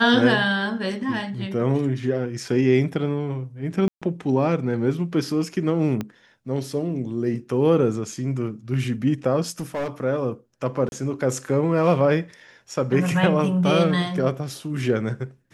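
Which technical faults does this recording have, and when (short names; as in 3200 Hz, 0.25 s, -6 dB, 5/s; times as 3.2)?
3.88–4.02 gap 0.136 s
6.01 pop -15 dBFS
9.6–9.88 clipped -23 dBFS
10.89–10.92 gap 31 ms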